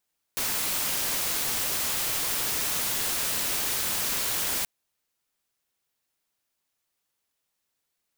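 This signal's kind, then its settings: noise white, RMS -28 dBFS 4.28 s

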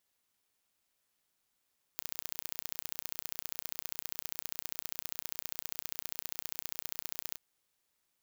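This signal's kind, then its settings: pulse train 30 per s, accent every 2, -9 dBFS 5.40 s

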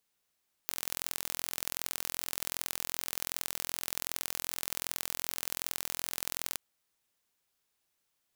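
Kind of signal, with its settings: pulse train 42.6 per s, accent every 2, -5.5 dBFS 5.87 s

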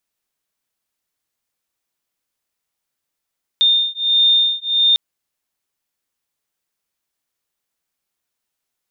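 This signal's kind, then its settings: beating tones 3.63 kHz, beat 1.5 Hz, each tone -15.5 dBFS 1.35 s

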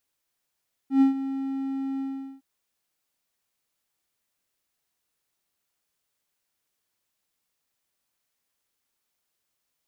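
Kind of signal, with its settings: ADSR triangle 270 Hz, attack 111 ms, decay 124 ms, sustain -13.5 dB, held 1.10 s, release 411 ms -11.5 dBFS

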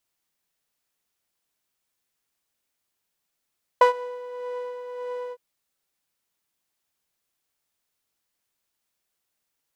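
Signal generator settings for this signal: synth patch with tremolo B5, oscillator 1 saw, sub -3.5 dB, noise -10 dB, filter bandpass, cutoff 400 Hz, Q 1.9, filter envelope 1 oct, filter sustain 45%, attack 4.6 ms, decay 0.11 s, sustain -23 dB, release 0.05 s, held 1.51 s, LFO 1.7 Hz, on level 5.5 dB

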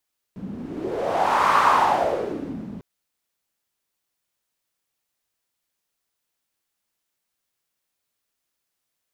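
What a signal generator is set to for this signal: wind-like swept noise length 2.45 s, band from 200 Hz, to 1.1 kHz, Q 4, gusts 1, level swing 17 dB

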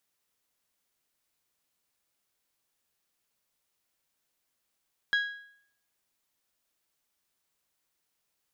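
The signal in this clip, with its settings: metal hit bell, lowest mode 1.65 kHz, decay 0.64 s, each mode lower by 8.5 dB, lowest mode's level -21 dB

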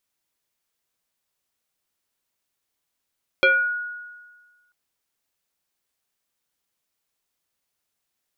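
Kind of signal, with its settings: FM tone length 1.29 s, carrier 1.45 kHz, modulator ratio 0.63, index 1.8, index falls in 0.41 s exponential, decay 1.46 s, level -11.5 dB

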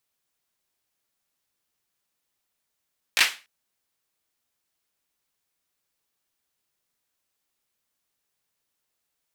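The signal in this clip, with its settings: hand clap length 0.29 s, bursts 3, apart 18 ms, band 2.3 kHz, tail 0.30 s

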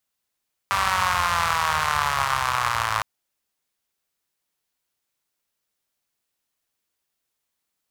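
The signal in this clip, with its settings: four-cylinder engine model, changing speed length 2.31 s, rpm 5900, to 3200, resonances 82/1100 Hz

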